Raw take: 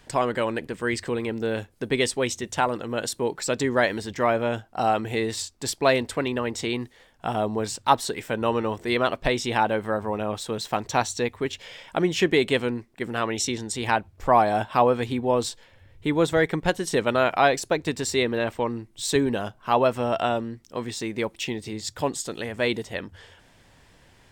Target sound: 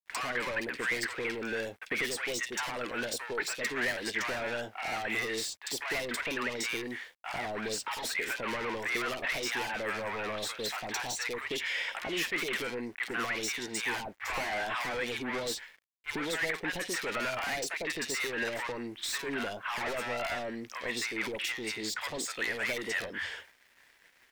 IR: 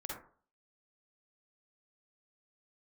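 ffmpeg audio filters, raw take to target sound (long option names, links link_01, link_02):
-filter_complex "[0:a]asplit=2[link_01][link_02];[link_02]highpass=frequency=720:poles=1,volume=18dB,asoftclip=type=tanh:threshold=-4.5dB[link_03];[link_01][link_03]amix=inputs=2:normalize=0,lowpass=frequency=6200:poles=1,volume=-6dB,asoftclip=type=tanh:threshold=-21.5dB,highshelf=frequency=4300:gain=5.5,acompressor=threshold=-32dB:ratio=6,acrossover=split=820|3000[link_04][link_05][link_06];[link_06]adelay=50[link_07];[link_04]adelay=100[link_08];[link_08][link_05][link_07]amix=inputs=3:normalize=0,agate=range=-33dB:threshold=-37dB:ratio=3:detection=peak,aeval=exprs='val(0)*gte(abs(val(0)),0.00106)':channel_layout=same,equalizer=frequency=125:width_type=o:width=1:gain=-6,equalizer=frequency=2000:width_type=o:width=1:gain=10,equalizer=frequency=8000:width_type=o:width=1:gain=-3,volume=-2dB"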